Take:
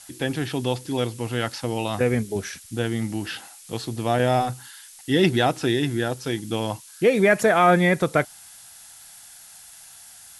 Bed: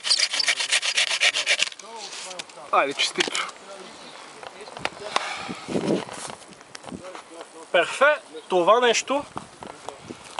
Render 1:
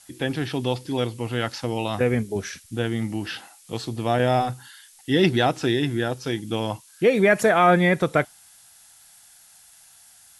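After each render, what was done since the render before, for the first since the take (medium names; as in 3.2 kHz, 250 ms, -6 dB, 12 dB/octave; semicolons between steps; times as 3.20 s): noise print and reduce 6 dB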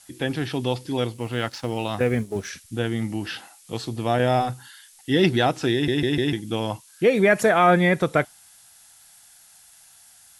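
1.12–2.48 s: companding laws mixed up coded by A; 5.73 s: stutter in place 0.15 s, 4 plays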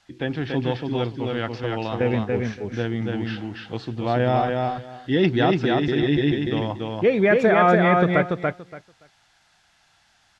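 distance through air 200 m; feedback delay 286 ms, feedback 17%, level -3 dB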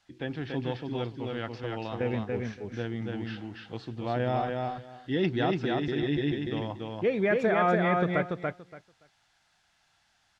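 trim -8 dB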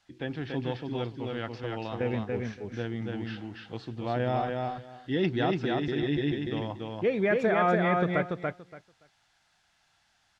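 no audible change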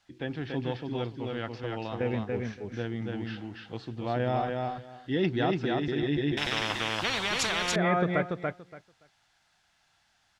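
6.37–7.76 s: spectrum-flattening compressor 10:1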